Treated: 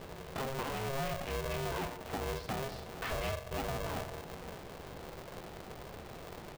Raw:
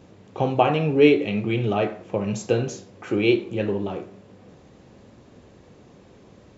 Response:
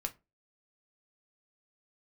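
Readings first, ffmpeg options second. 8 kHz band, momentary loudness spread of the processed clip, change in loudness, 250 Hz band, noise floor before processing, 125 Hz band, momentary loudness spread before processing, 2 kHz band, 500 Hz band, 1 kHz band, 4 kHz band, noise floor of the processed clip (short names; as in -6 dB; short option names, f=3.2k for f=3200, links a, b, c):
n/a, 11 LU, -17.0 dB, -20.0 dB, -51 dBFS, -13.0 dB, 12 LU, -10.5 dB, -16.5 dB, -11.0 dB, -9.0 dB, -48 dBFS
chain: -af "acompressor=threshold=-34dB:ratio=12,aresample=11025,asoftclip=type=hard:threshold=-35.5dB,aresample=44100,aeval=exprs='val(0)*sgn(sin(2*PI*270*n/s))':c=same,volume=3dB"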